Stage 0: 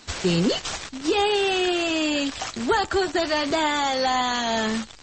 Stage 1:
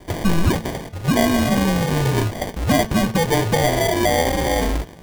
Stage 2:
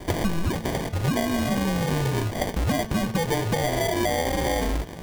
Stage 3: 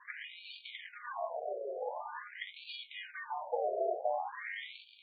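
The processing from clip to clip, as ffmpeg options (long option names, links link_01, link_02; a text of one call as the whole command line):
ffmpeg -i in.wav -af "afreqshift=-170,acrusher=samples=33:mix=1:aa=0.000001,bandreject=frequency=221.8:width_type=h:width=4,bandreject=frequency=443.6:width_type=h:width=4,bandreject=frequency=665.4:width_type=h:width=4,bandreject=frequency=887.2:width_type=h:width=4,bandreject=frequency=1109:width_type=h:width=4,bandreject=frequency=1330.8:width_type=h:width=4,bandreject=frequency=1552.6:width_type=h:width=4,bandreject=frequency=1774.4:width_type=h:width=4,bandreject=frequency=1996.2:width_type=h:width=4,bandreject=frequency=2218:width_type=h:width=4,bandreject=frequency=2439.8:width_type=h:width=4,bandreject=frequency=2661.6:width_type=h:width=4,bandreject=frequency=2883.4:width_type=h:width=4,bandreject=frequency=3105.2:width_type=h:width=4,bandreject=frequency=3327:width_type=h:width=4,bandreject=frequency=3548.8:width_type=h:width=4,bandreject=frequency=3770.6:width_type=h:width=4,bandreject=frequency=3992.4:width_type=h:width=4,bandreject=frequency=4214.2:width_type=h:width=4,bandreject=frequency=4436:width_type=h:width=4,bandreject=frequency=4657.8:width_type=h:width=4,bandreject=frequency=4879.6:width_type=h:width=4,bandreject=frequency=5101.4:width_type=h:width=4,bandreject=frequency=5323.2:width_type=h:width=4,bandreject=frequency=5545:width_type=h:width=4,bandreject=frequency=5766.8:width_type=h:width=4,bandreject=frequency=5988.6:width_type=h:width=4,bandreject=frequency=6210.4:width_type=h:width=4,bandreject=frequency=6432.2:width_type=h:width=4,volume=5dB" out.wav
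ffmpeg -i in.wav -af "acompressor=threshold=-26dB:ratio=10,volume=5dB" out.wav
ffmpeg -i in.wav -af "afftfilt=real='re*between(b*sr/1024,500*pow(3300/500,0.5+0.5*sin(2*PI*0.46*pts/sr))/1.41,500*pow(3300/500,0.5+0.5*sin(2*PI*0.46*pts/sr))*1.41)':imag='im*between(b*sr/1024,500*pow(3300/500,0.5+0.5*sin(2*PI*0.46*pts/sr))/1.41,500*pow(3300/500,0.5+0.5*sin(2*PI*0.46*pts/sr))*1.41)':win_size=1024:overlap=0.75,volume=-6dB" out.wav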